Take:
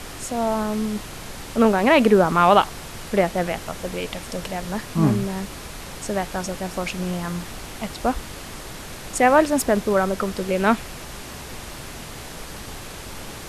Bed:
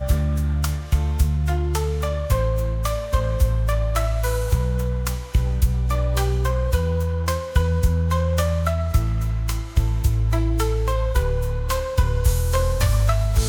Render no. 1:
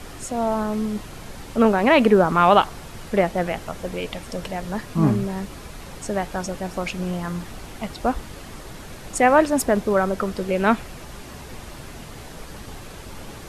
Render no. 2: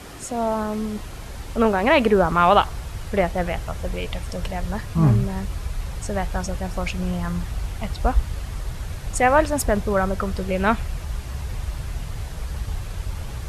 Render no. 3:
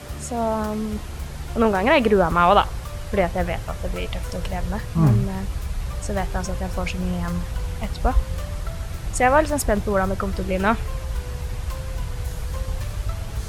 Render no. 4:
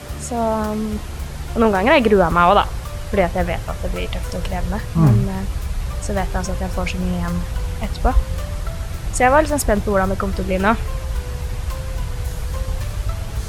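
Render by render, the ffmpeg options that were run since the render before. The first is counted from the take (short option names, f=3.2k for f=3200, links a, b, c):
-af "afftdn=nr=6:nf=-37"
-af "highpass=41,asubboost=boost=10.5:cutoff=80"
-filter_complex "[1:a]volume=-15dB[a];[0:a][a]amix=inputs=2:normalize=0"
-af "volume=3.5dB,alimiter=limit=-2dB:level=0:latency=1"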